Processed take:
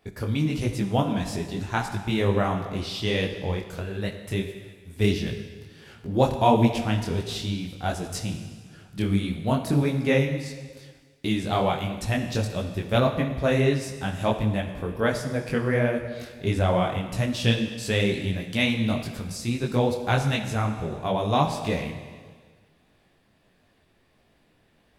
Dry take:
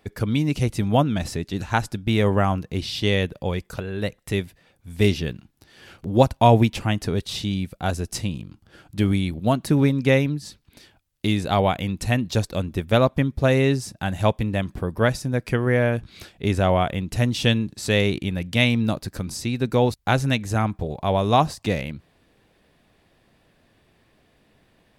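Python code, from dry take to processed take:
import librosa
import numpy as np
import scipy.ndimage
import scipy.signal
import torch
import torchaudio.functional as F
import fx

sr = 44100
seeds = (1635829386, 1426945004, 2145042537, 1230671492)

y = fx.rev_schroeder(x, sr, rt60_s=1.6, comb_ms=38, drr_db=7.5)
y = fx.detune_double(y, sr, cents=52)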